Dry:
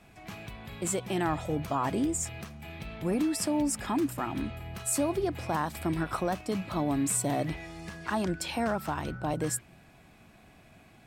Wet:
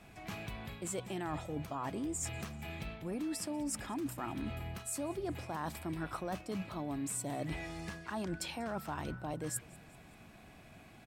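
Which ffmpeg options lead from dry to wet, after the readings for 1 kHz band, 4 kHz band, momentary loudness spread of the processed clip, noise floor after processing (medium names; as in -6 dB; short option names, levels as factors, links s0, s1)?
-9.0 dB, -6.5 dB, 12 LU, -57 dBFS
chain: -af "areverse,acompressor=threshold=0.0158:ratio=6,areverse,aecho=1:1:192|384|576:0.0668|0.0354|0.0188"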